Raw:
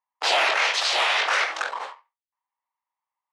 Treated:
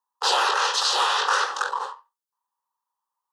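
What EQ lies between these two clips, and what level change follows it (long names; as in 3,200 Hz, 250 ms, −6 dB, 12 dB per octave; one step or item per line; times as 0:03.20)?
high-pass filter 260 Hz 12 dB per octave
phaser with its sweep stopped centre 440 Hz, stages 8
+5.0 dB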